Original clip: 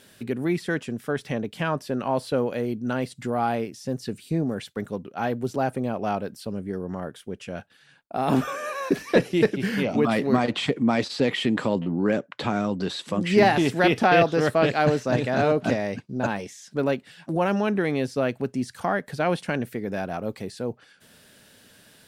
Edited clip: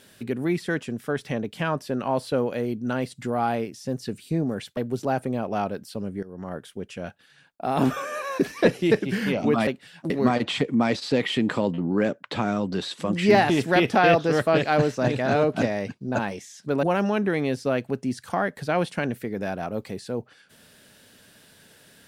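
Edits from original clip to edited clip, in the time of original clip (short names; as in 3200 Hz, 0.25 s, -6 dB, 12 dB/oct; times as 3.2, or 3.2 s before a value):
4.77–5.28 cut
6.74–7.07 fade in, from -16.5 dB
16.91–17.34 move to 10.18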